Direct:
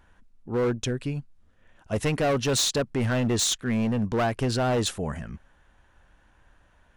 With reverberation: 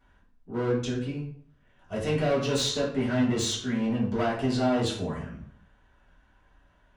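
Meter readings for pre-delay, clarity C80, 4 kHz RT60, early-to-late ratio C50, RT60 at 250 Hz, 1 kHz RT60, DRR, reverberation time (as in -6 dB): 3 ms, 9.5 dB, 0.40 s, 5.0 dB, 0.65 s, 0.55 s, -10.0 dB, 0.60 s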